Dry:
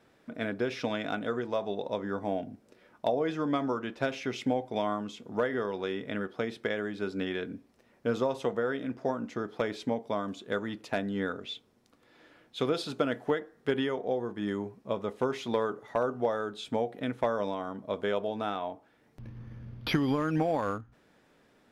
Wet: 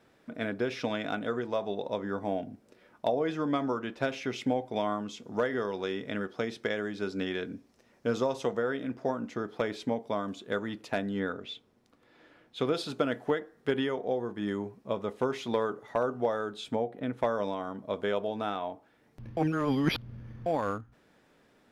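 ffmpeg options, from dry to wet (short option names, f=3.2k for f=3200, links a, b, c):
-filter_complex "[0:a]asettb=1/sr,asplit=3[a][b][c];[a]atrim=end=5.114[d];[b]atrim=start=5.11:end=8.62,asetpts=PTS-STARTPTS,afade=t=in:d=0.004:c=qsin,afade=t=out:st=3.506:d=0.004:c=qsin,equalizer=f=5.9k:w=1.5:g=6[e];[c]atrim=start=8.616[f];[d][e]acrossfade=d=0.004:c1=hsin:c2=qsin[g];[g][f]acrossfade=d=0.004:c1=qsin:c2=hsin,asettb=1/sr,asplit=3[h][i][j];[h]atrim=end=11.194[k];[i]atrim=start=11.19:end=12.69,asetpts=PTS-STARTPTS,afade=t=in:d=0.004:c=qsin,afade=t=out:st=1.496:d=0.004:c=qsin,highshelf=f=4.7k:g=-6[l];[j]atrim=start=12.686[m];[k][l]acrossfade=d=0.004:c1=hsin:c2=qsin[n];[n][m]acrossfade=d=0.004:c1=qsin:c2=hsin,asplit=3[o][p][q];[o]afade=t=out:st=16.74:d=0.02[r];[p]highshelf=f=2.1k:g=-9.5,afade=t=in:st=16.74:d=0.02,afade=t=out:st=17.16:d=0.02[s];[q]afade=t=in:st=17.16:d=0.02[t];[r][s][t]amix=inputs=3:normalize=0,asplit=3[u][v][w];[u]atrim=end=19.372[x];[v]atrim=start=19.368:end=20.462,asetpts=PTS-STARTPTS,areverse[y];[w]atrim=start=20.458[z];[x][y]acrossfade=d=0.004:c1=hsin:c2=hsin[aa];[aa][z]acrossfade=d=0.004:c1=hsin:c2=hsin"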